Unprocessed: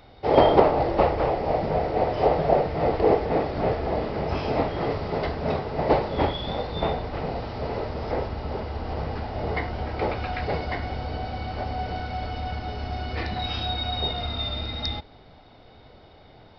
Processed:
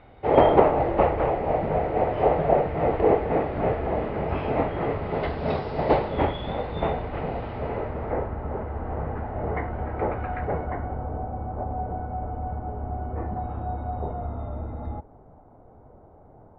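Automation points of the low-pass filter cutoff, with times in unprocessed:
low-pass filter 24 dB per octave
0:05.02 2,700 Hz
0:05.65 5,200 Hz
0:06.25 2,900 Hz
0:07.50 2,900 Hz
0:08.33 1,800 Hz
0:10.35 1,800 Hz
0:11.30 1,100 Hz

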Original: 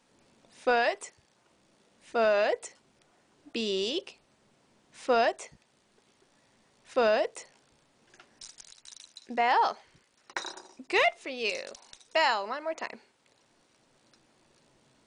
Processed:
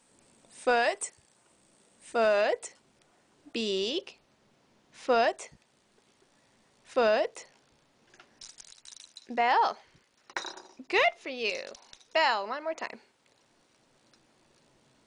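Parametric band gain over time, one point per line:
parametric band 8,400 Hz 0.34 octaves
+14.5 dB
from 0:02.41 +3 dB
from 0:03.78 −6.5 dB
from 0:05.10 +1 dB
from 0:07.19 −5.5 dB
from 0:08.48 +1 dB
from 0:09.22 −5.5 dB
from 0:10.44 −11.5 dB
from 0:12.78 −1 dB

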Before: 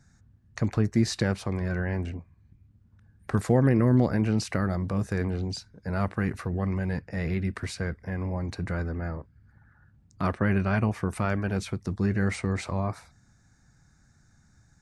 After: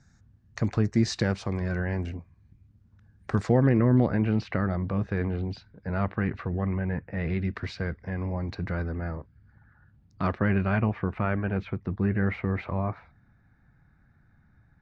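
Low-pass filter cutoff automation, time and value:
low-pass filter 24 dB per octave
0:03.35 7,000 Hz
0:03.83 3,600 Hz
0:06.37 3,600 Hz
0:07.01 2,300 Hz
0:07.40 4,700 Hz
0:10.32 4,700 Hz
0:11.07 2,800 Hz

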